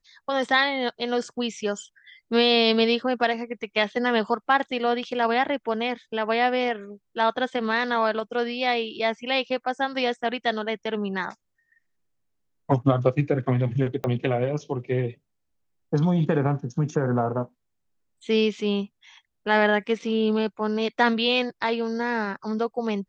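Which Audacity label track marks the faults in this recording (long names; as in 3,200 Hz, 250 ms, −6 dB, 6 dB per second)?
14.040000	14.040000	click −16 dBFS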